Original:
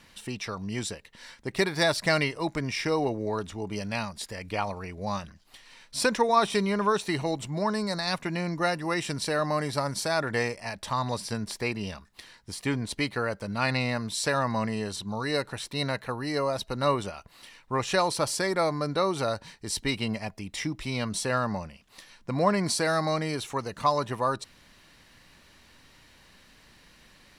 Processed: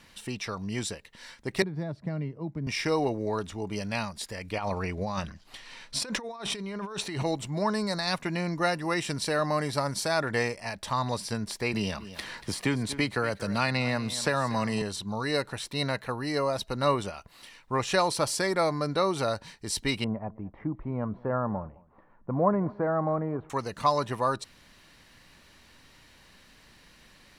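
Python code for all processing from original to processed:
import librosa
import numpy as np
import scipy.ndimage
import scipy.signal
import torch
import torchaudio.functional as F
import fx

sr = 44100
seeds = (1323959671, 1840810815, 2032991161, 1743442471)

y = fx.chain(x, sr, fx.bandpass_q(hz=150.0, q=1.2),
    fx.band_squash(depth_pct=70), at=(1.62, 2.67))
y = fx.chain(y, sr, fx.high_shelf(hz=10000.0, db=-10.5),
    fx.over_compress(threshold_db=-34.0, ratio=-1.0),
    fx.clip_hard(threshold_db=-18.0), at=(4.58, 7.23))
y = fx.chain(y, sr, fx.echo_single(ms=235, db=-18.0),
    fx.band_squash(depth_pct=70), at=(11.73, 14.82))
y = fx.chain(y, sr, fx.lowpass(hz=1200.0, slope=24),
    fx.echo_single(ms=213, db=-23.5), at=(20.04, 23.5))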